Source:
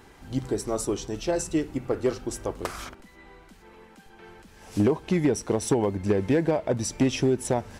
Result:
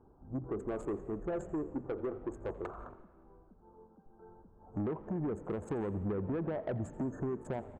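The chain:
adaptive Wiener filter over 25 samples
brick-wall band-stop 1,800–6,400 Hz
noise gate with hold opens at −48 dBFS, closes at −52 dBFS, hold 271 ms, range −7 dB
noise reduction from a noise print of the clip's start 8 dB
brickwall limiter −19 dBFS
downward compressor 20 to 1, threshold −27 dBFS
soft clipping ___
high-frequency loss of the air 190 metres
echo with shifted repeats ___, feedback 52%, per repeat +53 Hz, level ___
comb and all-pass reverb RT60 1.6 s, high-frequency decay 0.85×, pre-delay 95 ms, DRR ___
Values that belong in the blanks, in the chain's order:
−30 dBFS, 85 ms, −20 dB, 17 dB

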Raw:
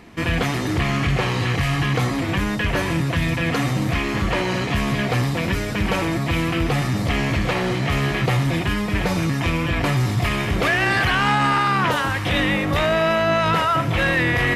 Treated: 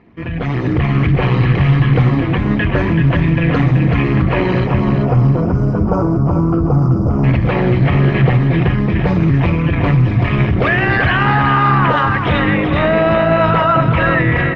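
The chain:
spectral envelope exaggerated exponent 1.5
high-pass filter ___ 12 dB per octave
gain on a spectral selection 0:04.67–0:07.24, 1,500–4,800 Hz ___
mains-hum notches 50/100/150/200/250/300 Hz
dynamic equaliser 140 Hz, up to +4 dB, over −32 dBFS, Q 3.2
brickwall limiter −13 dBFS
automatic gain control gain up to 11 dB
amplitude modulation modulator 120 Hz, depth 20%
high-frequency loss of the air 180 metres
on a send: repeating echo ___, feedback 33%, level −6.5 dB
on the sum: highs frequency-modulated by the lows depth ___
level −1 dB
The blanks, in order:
40 Hz, −27 dB, 381 ms, 0.11 ms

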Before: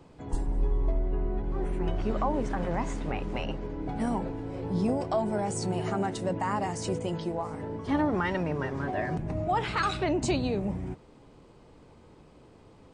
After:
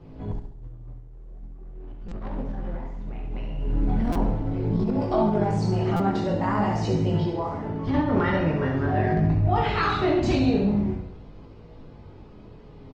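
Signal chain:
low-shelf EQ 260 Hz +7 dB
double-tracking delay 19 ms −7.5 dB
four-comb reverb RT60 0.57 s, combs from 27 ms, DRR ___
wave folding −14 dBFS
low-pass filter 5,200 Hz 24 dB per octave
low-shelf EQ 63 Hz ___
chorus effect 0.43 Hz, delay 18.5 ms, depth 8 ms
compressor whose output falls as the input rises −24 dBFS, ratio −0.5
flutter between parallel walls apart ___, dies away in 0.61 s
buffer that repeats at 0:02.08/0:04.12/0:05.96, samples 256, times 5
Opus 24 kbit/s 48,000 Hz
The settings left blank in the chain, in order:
5 dB, +5.5 dB, 11.7 metres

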